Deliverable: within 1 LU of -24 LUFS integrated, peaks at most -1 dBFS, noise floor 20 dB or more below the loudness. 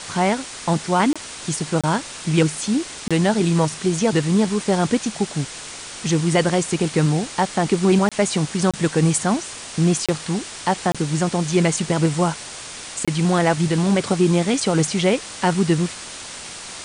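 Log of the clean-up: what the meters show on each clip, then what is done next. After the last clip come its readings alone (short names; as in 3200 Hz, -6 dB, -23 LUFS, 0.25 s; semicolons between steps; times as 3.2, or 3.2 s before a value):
dropouts 8; longest dropout 26 ms; noise floor -35 dBFS; noise floor target -41 dBFS; loudness -20.5 LUFS; peak -6.0 dBFS; loudness target -24.0 LUFS
-> interpolate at 1.13/1.81/3.08/8.09/8.71/10.06/10.92/13.05, 26 ms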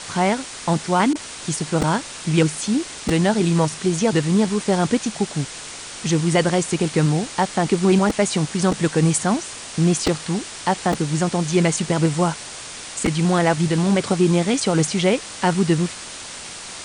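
dropouts 0; noise floor -35 dBFS; noise floor target -41 dBFS
-> noise print and reduce 6 dB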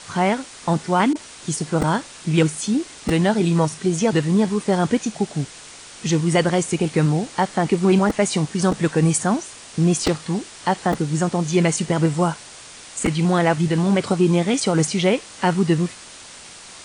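noise floor -41 dBFS; loudness -20.5 LUFS; peak -5.5 dBFS; loudness target -24.0 LUFS
-> gain -3.5 dB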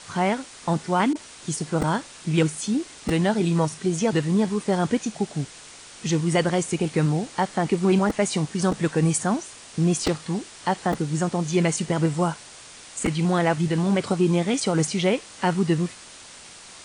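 loudness -24.0 LUFS; peak -9.0 dBFS; noise floor -45 dBFS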